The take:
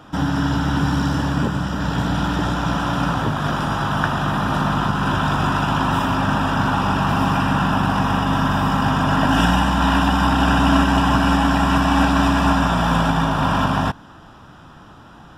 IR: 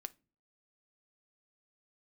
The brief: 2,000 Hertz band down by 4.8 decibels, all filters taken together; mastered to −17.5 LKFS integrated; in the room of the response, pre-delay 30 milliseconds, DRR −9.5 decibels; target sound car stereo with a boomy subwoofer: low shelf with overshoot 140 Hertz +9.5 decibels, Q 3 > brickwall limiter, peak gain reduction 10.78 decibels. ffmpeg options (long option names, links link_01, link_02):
-filter_complex "[0:a]equalizer=frequency=2000:width_type=o:gain=-7,asplit=2[link_01][link_02];[1:a]atrim=start_sample=2205,adelay=30[link_03];[link_02][link_03]afir=irnorm=-1:irlink=0,volume=13.5dB[link_04];[link_01][link_04]amix=inputs=2:normalize=0,lowshelf=frequency=140:width_type=q:width=3:gain=9.5,volume=-8dB,alimiter=limit=-9dB:level=0:latency=1"